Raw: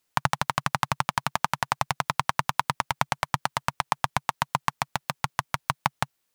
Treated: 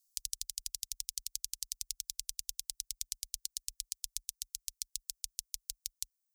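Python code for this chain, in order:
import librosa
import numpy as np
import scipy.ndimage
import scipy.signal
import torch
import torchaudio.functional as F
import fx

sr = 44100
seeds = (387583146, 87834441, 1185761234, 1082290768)

y = fx.dereverb_blind(x, sr, rt60_s=0.66)
y = scipy.signal.sosfilt(scipy.signal.cheby2(4, 80, [190.0, 1100.0], 'bandstop', fs=sr, output='sos'), y)
y = fx.peak_eq(y, sr, hz=620.0, db=12.0, octaves=2.0)
y = y * librosa.db_to_amplitude(2.0)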